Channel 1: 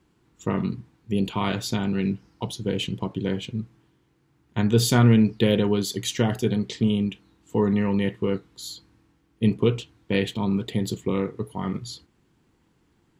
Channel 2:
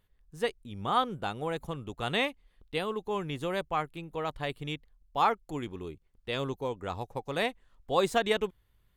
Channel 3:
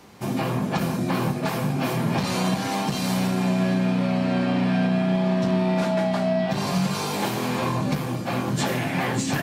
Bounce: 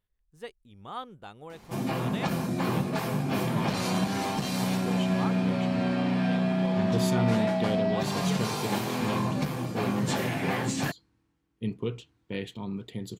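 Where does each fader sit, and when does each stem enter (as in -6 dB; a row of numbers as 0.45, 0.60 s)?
-11.0, -11.0, -4.5 dB; 2.20, 0.00, 1.50 s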